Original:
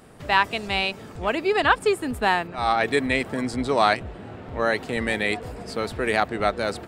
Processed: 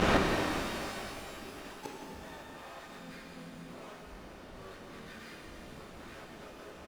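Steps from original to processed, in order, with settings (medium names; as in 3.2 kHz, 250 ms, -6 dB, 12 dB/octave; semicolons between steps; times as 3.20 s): steep low-pass 3.5 kHz 96 dB/octave; hum notches 60/120/180/240/300/360 Hz; comb 3.3 ms, depth 60%; compression 12:1, threshold -29 dBFS, peak gain reduction 18 dB; fuzz box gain 41 dB, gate -50 dBFS; harmony voices -7 st -1 dB, -3 st -3 dB, +12 st -6 dB; inverted gate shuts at -9 dBFS, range -38 dB; pitch-shifted reverb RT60 2.8 s, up +12 st, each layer -8 dB, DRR -1 dB; trim -2 dB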